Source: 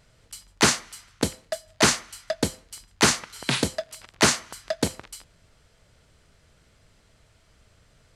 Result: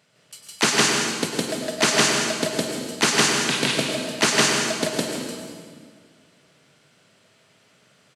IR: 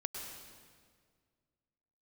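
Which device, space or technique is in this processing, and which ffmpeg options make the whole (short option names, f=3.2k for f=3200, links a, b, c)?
stadium PA: -filter_complex "[0:a]highpass=f=150:w=0.5412,highpass=f=150:w=1.3066,equalizer=f=2.8k:t=o:w=0.76:g=4,aecho=1:1:160.3|209.9:1|0.282[a];[1:a]atrim=start_sample=2205[b];[a][b]afir=irnorm=-1:irlink=0"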